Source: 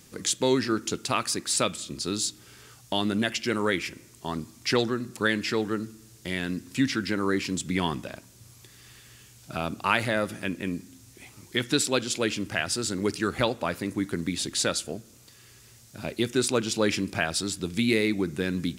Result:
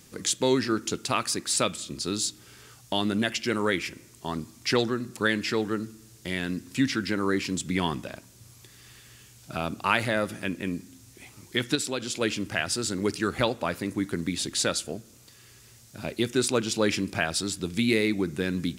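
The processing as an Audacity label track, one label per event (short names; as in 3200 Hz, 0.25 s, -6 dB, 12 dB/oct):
11.750000	12.210000	compressor 2:1, threshold -29 dBFS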